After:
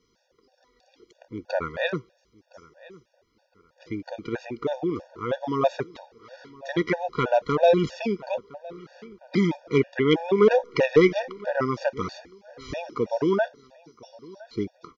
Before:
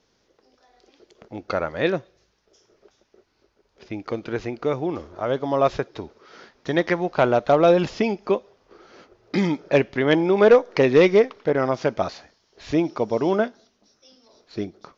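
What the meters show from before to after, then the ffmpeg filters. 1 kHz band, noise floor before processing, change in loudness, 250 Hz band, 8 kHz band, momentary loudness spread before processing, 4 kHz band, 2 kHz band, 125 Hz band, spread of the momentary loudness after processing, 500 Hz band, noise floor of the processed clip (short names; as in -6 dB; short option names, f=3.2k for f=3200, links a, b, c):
-3.5 dB, -67 dBFS, -4.0 dB, -3.0 dB, n/a, 17 LU, -2.0 dB, -3.5 dB, -2.5 dB, 17 LU, -4.0 dB, -69 dBFS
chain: -filter_complex "[0:a]asplit=2[a][b];[b]adelay=1013,lowpass=f=4.1k:p=1,volume=-21.5dB,asplit=2[c][d];[d]adelay=1013,lowpass=f=4.1k:p=1,volume=0.34[e];[a][c][e]amix=inputs=3:normalize=0,afftfilt=real='re*gt(sin(2*PI*3.1*pts/sr)*(1-2*mod(floor(b*sr/1024/480),2)),0)':imag='im*gt(sin(2*PI*3.1*pts/sr)*(1-2*mod(floor(b*sr/1024/480),2)),0)':win_size=1024:overlap=0.75"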